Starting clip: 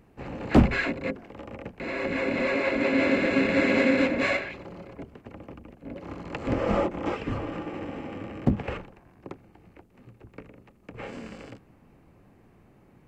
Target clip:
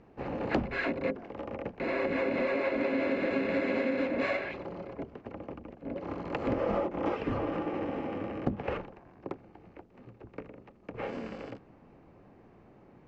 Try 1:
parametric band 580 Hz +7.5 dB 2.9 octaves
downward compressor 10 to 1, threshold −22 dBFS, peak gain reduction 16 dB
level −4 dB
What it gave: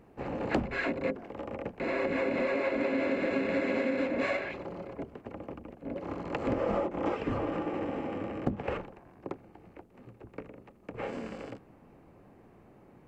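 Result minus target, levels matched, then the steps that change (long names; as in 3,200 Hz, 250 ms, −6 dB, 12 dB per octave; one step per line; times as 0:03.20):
8,000 Hz band +5.5 dB
add first: low-pass filter 6,100 Hz 24 dB per octave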